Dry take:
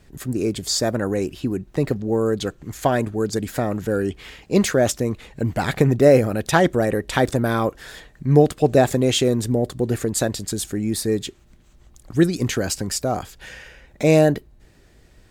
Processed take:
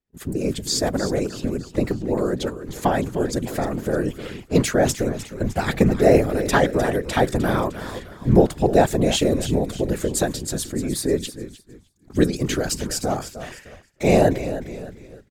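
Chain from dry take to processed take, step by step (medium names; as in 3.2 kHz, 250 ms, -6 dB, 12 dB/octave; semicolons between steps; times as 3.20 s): frequency-shifting echo 305 ms, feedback 49%, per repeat -50 Hz, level -12 dB; expander -32 dBFS; whisper effect; trim -1 dB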